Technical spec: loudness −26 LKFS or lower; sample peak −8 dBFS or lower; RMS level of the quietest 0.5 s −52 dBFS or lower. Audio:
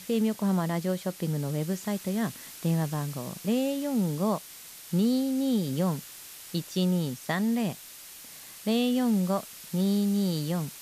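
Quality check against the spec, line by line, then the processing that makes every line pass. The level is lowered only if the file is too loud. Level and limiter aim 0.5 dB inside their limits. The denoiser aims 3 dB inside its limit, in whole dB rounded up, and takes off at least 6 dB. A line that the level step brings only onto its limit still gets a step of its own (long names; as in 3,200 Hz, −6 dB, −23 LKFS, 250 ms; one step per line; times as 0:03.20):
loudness −28.5 LKFS: in spec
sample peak −16.5 dBFS: in spec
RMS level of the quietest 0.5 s −46 dBFS: out of spec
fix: broadband denoise 9 dB, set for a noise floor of −46 dBFS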